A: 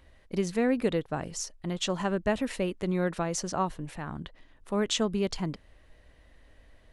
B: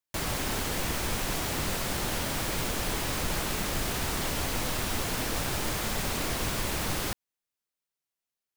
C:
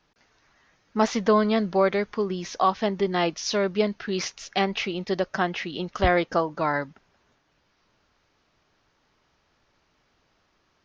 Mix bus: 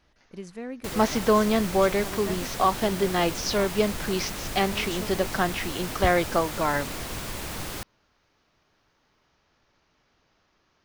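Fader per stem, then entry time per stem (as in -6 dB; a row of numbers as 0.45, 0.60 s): -10.5, -3.5, -0.5 dB; 0.00, 0.70, 0.00 s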